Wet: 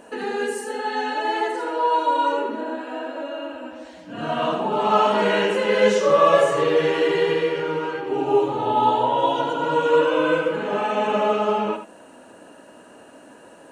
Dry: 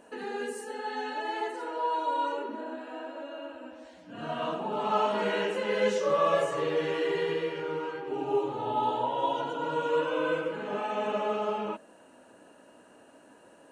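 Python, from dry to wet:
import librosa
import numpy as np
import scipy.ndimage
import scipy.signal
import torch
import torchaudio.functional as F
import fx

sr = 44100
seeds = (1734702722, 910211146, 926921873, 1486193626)

y = x + 10.0 ** (-10.0 / 20.0) * np.pad(x, (int(81 * sr / 1000.0), 0))[:len(x)]
y = y * 10.0 ** (9.0 / 20.0)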